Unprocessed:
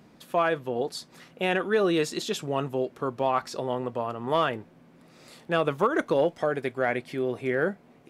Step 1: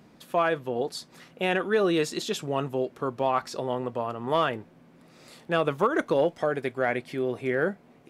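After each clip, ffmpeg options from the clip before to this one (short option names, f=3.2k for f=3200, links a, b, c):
-af anull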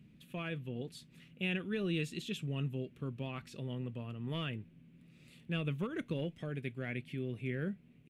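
-af "firequalizer=gain_entry='entry(150,0);entry(340,-13);entry(790,-27);entry(2600,-4);entry(4900,-19);entry(8700,-13)':delay=0.05:min_phase=1"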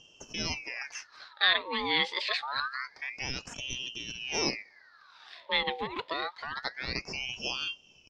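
-af "lowpass=f=4.3k:t=q:w=3.2,equalizer=f=2.8k:w=2.5:g=11.5,aeval=exprs='val(0)*sin(2*PI*1800*n/s+1800*0.65/0.26*sin(2*PI*0.26*n/s))':c=same,volume=4dB"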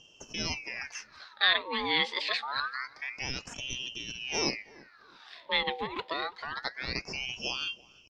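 -filter_complex "[0:a]asplit=2[a][b];[b]adelay=330,lowpass=f=1.3k:p=1,volume=-21dB,asplit=2[c][d];[d]adelay=330,lowpass=f=1.3k:p=1,volume=0.35,asplit=2[e][f];[f]adelay=330,lowpass=f=1.3k:p=1,volume=0.35[g];[a][c][e][g]amix=inputs=4:normalize=0"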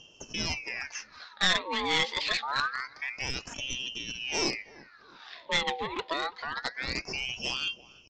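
-af "aresample=16000,aeval=exprs='clip(val(0),-1,0.0422)':c=same,aresample=44100,aphaser=in_gain=1:out_gain=1:delay=4.2:decay=0.24:speed=0.38:type=sinusoidal,volume=2dB"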